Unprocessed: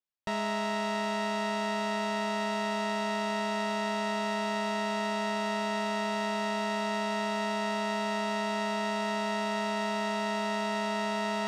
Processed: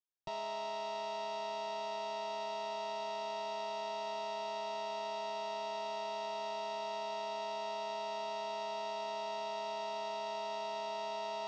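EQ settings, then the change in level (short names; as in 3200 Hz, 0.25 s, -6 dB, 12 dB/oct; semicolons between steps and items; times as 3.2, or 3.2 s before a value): LPF 5800 Hz 24 dB/oct; fixed phaser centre 320 Hz, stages 8; -5.0 dB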